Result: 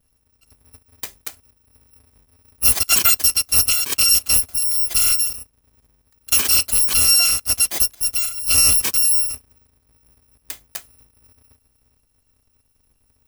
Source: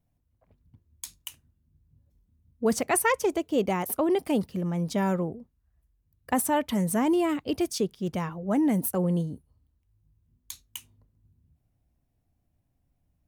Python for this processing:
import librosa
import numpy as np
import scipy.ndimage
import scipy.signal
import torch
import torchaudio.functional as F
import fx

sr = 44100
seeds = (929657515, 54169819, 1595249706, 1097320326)

y = fx.bit_reversed(x, sr, seeds[0], block=256)
y = y * librosa.db_to_amplitude(9.0)